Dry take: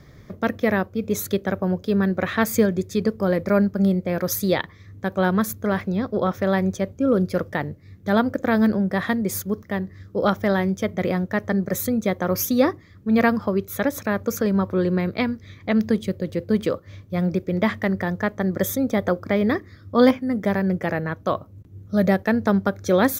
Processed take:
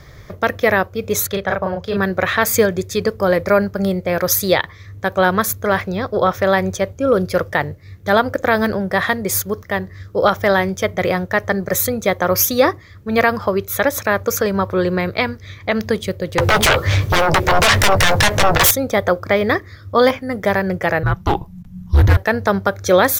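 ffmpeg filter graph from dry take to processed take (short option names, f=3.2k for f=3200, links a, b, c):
-filter_complex "[0:a]asettb=1/sr,asplit=3[a][b][c];[a]atrim=end=1.274[d];[b]atrim=start=1.27:end=1.97,asetpts=PTS-STARTPTS,afade=t=in:d=0.004:c=qsin,afade=t=out:st=0.696:d=0.004:c=qsin,lowpass=f=2.7k:p=1,equalizer=f=310:w=1.7:g=-9.5,asplit=2[e][f];[f]adelay=36,volume=-3dB[g];[e][g]amix=inputs=2:normalize=0,atrim=end_sample=30870[h];[c]atrim=start=1.966[i];[d][h]acrossfade=d=0.004:c1=hsin:c2=qsin[j];[j][i]acrossfade=d=0.004:c1=qsin:c2=hsin,asettb=1/sr,asplit=3[k][l][m];[k]atrim=end=16.384[n];[l]atrim=start=16.38:end=18.71,asetpts=PTS-STARTPTS,afade=t=in:d=0.004:c=qsin,afade=t=out:st=2.326:d=0.004:c=qsin,acompressor=threshold=-32dB:ratio=2.5:attack=3.2:release=140:knee=1:detection=peak,aeval=exprs='0.133*sin(PI/2*7.94*val(0)/0.133)':c=same,asplit=2[o][p];[p]adelay=14,volume=-11dB[q];[o][q]amix=inputs=2:normalize=0,atrim=end_sample=102753[r];[m]atrim=start=18.706[s];[n][r]acrossfade=d=0.004:c1=hsin:c2=qsin[t];[t][s]acrossfade=d=0.004:c1=qsin:c2=hsin,asettb=1/sr,asplit=3[u][v][w];[u]atrim=end=21.034[x];[v]atrim=start=21.03:end=22.17,asetpts=PTS-STARTPTS,afade=t=in:d=0.004:c=qsin,afade=t=out:st=1.136:d=0.004:c=qsin,lowshelf=f=350:g=7,afreqshift=-280,asoftclip=type=hard:threshold=-15dB[y];[w]atrim=start=22.166[z];[x][y]acrossfade=d=0.004:c1=hsin:c2=qsin[aa];[aa][z]acrossfade=d=0.004:c1=qsin:c2=hsin,equalizer=f=230:w=1.1:g=-13,alimiter=level_in=11dB:limit=-1dB:release=50:level=0:latency=1,volume=-1dB"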